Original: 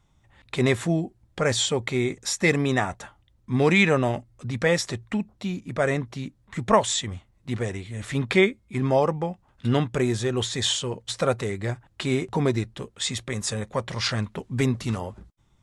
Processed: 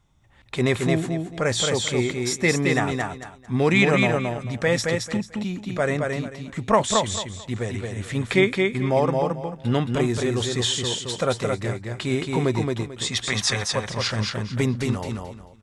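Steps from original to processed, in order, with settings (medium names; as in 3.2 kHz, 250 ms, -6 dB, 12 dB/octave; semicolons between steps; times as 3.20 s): time-frequency box 13.12–13.67 s, 640–6400 Hz +9 dB; feedback delay 221 ms, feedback 24%, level -3.5 dB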